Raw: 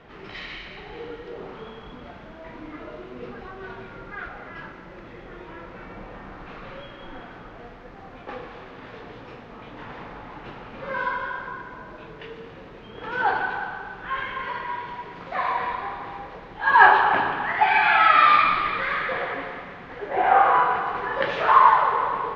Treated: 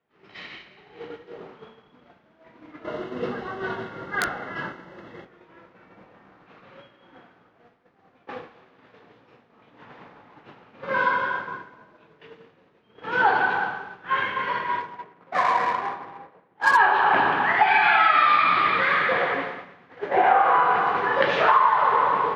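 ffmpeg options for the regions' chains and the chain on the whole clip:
ffmpeg -i in.wav -filter_complex "[0:a]asettb=1/sr,asplit=3[link_01][link_02][link_03];[link_01]atrim=end=2.844[link_04];[link_02]atrim=start=2.84:end=5.25,asetpts=PTS-STARTPTS,afade=type=in:duration=0.004:curve=qsin,afade=type=out:start_time=2.406:duration=0.004:curve=qsin,asuperstop=centerf=2400:order=8:qfactor=7.1,acontrast=29,aeval=exprs='(mod(9.44*val(0)+1,2)-1)/9.44':channel_layout=same[link_05];[link_03]atrim=start=5.246[link_06];[link_04][link_05]acrossfade=duration=0.004:curve1=hsin:curve2=qsin[link_07];[link_07][link_06]acrossfade=duration=0.004:curve1=qsin:curve2=hsin,asettb=1/sr,asplit=3[link_08][link_09][link_10];[link_08]atrim=end=14.804[link_11];[link_09]atrim=start=14.8:end=16.77,asetpts=PTS-STARTPTS,afade=type=in:duration=0.004:curve=qsin,afade=type=out:start_time=1.966:duration=0.004:curve=qsin,highpass=80,lowshelf=frequency=280:gain=-2.5,adynamicsmooth=sensitivity=2.5:basefreq=1800[link_12];[link_10]atrim=start=16.766[link_13];[link_11][link_12]acrossfade=duration=0.004:curve1=hsin:curve2=qsin[link_14];[link_14][link_13]acrossfade=duration=0.004:curve1=qsin:curve2=hsin,highpass=120,agate=range=-33dB:threshold=-29dB:ratio=3:detection=peak,acompressor=threshold=-19dB:ratio=10,volume=5dB" out.wav

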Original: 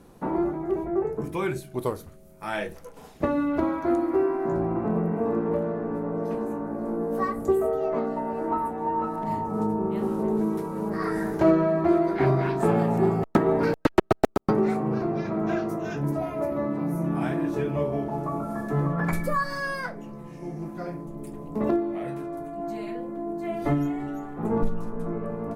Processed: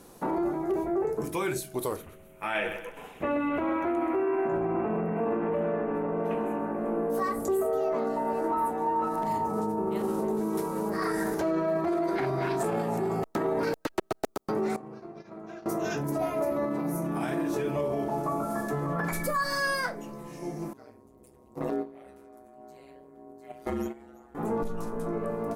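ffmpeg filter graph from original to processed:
ffmpeg -i in.wav -filter_complex "[0:a]asettb=1/sr,asplit=3[link_01][link_02][link_03];[link_01]atrim=end=1.964[link_04];[link_02]atrim=start=1.96:end=7.1,asetpts=PTS-STARTPTS,afade=type=in:duration=0.004:curve=qsin,afade=type=out:start_time=5.136:duration=0.004:curve=qsin,highshelf=frequency=3600:width_type=q:width=3:gain=-10,aecho=1:1:130|260|390|520:0.266|0.0984|0.0364|0.0135,atrim=end_sample=226674[link_05];[link_03]atrim=start=7.096[link_06];[link_04][link_05]acrossfade=duration=0.004:curve1=hsin:curve2=qsin[link_07];[link_07][link_06]acrossfade=duration=0.004:curve1=qsin:curve2=hsin,asettb=1/sr,asplit=3[link_08][link_09][link_10];[link_08]atrim=end=14.764[link_11];[link_09]atrim=start=14.76:end=15.66,asetpts=PTS-STARTPTS,afade=type=in:duration=0.004:curve=qsin,afade=type=out:start_time=0.896:duration=0.004:curve=qsin,lowpass=10000,agate=range=-18dB:threshold=-27dB:ratio=16:release=100:detection=peak,acompressor=threshold=-40dB:ratio=6:attack=3.2:release=140:knee=1:detection=peak[link_12];[link_10]atrim=start=15.656[link_13];[link_11][link_12]acrossfade=duration=0.004:curve1=hsin:curve2=qsin[link_14];[link_14][link_13]acrossfade=duration=0.004:curve1=qsin:curve2=hsin,asettb=1/sr,asplit=3[link_15][link_16][link_17];[link_15]atrim=end=20.734[link_18];[link_16]atrim=start=20.73:end=24.35,asetpts=PTS-STARTPTS,afade=type=in:duration=0.004:curve=qsin,afade=type=out:start_time=3.616:duration=0.004:curve=qsin,agate=range=-15dB:threshold=-27dB:ratio=16:release=100:detection=peak,aeval=exprs='val(0)*sin(2*PI*64*n/s)':channel_layout=same[link_19];[link_17]atrim=start=24.346[link_20];[link_18][link_19]acrossfade=duration=0.004:curve1=hsin:curve2=qsin[link_21];[link_21][link_20]acrossfade=duration=0.004:curve1=qsin:curve2=hsin,alimiter=limit=-21.5dB:level=0:latency=1:release=31,bass=frequency=250:gain=-7,treble=frequency=4000:gain=8,volume=2dB" out.wav

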